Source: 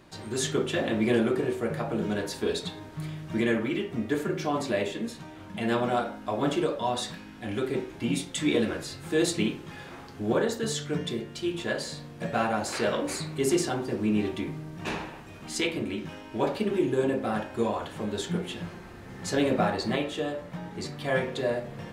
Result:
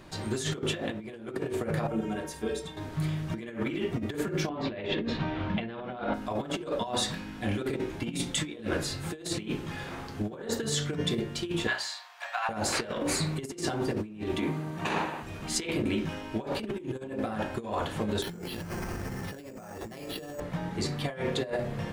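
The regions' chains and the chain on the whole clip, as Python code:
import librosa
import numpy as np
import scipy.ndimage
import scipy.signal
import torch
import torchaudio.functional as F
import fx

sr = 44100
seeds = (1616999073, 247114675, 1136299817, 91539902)

y = fx.chain(x, sr, fx.peak_eq(hz=4200.0, db=-13.5, octaves=0.22),
    fx.stiff_resonator(f0_hz=67.0, decay_s=0.26, stiffness=0.03), at=(1.87, 2.77))
y = fx.chain(y, sr, fx.lowpass(hz=3900.0, slope=24),
    fx.over_compress(threshold_db=-38.0, ratio=-1.0), at=(4.49, 6.14))
y = fx.chain(y, sr, fx.steep_highpass(hz=750.0, slope=48),
    fx.peak_eq(hz=10000.0, db=-8.5, octaves=0.84), at=(11.67, 12.49))
y = fx.chain(y, sr, fx.highpass(hz=140.0, slope=12),
    fx.peak_eq(hz=990.0, db=5.0, octaves=1.4),
    fx.notch(hz=5300.0, q=8.4), at=(14.38, 15.23))
y = fx.chain(y, sr, fx.resample_bad(factor=6, down='filtered', up='hold'),
    fx.env_flatten(amount_pct=70), at=(18.22, 20.4))
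y = fx.low_shelf(y, sr, hz=97.0, db=6.5)
y = fx.hum_notches(y, sr, base_hz=60, count=7)
y = fx.over_compress(y, sr, threshold_db=-31.0, ratio=-0.5)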